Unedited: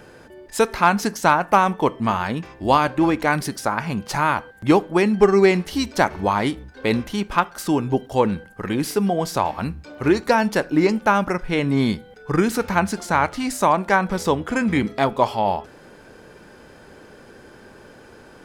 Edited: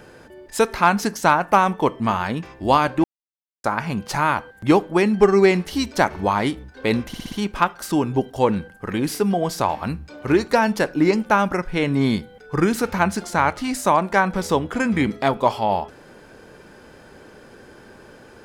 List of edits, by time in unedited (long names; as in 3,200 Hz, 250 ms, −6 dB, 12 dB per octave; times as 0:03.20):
0:03.04–0:03.64: silence
0:07.08: stutter 0.06 s, 5 plays